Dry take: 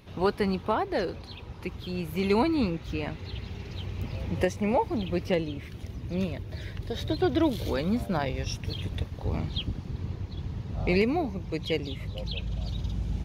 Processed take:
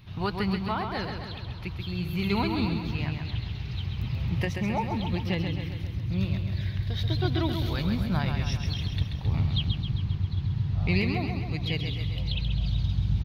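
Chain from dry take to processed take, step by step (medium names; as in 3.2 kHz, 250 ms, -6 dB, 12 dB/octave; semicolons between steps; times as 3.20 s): ten-band graphic EQ 125 Hz +9 dB, 250 Hz -4 dB, 500 Hz -11 dB, 4 kHz +5 dB, 8 kHz -11 dB; feedback delay 133 ms, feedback 60%, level -6 dB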